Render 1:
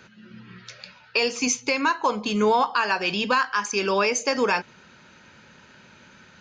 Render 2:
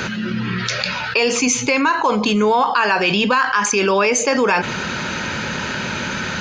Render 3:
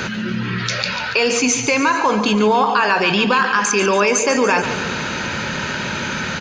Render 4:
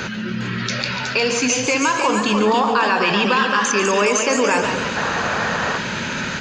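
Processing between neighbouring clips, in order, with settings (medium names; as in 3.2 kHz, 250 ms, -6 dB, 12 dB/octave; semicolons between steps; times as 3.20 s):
dynamic bell 5.3 kHz, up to -6 dB, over -41 dBFS, Q 1.8; level flattener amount 70%; trim +3.5 dB
feedback delay 143 ms, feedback 59%, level -10.5 dB
ever faster or slower copies 406 ms, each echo +1 st, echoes 2, each echo -6 dB; painted sound noise, 4.96–5.78 s, 420–1900 Hz -21 dBFS; trim -2.5 dB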